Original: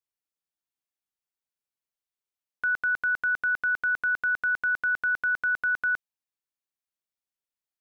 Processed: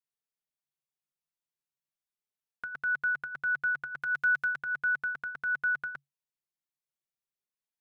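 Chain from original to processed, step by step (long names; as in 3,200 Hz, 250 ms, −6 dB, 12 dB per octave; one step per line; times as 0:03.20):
parametric band 140 Hz +14 dB 0.25 octaves
flanger 0.38 Hz, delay 4.3 ms, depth 1.5 ms, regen −3%
0:04.02–0:04.56: high-shelf EQ 2,400 Hz +9.5 dB
level −2 dB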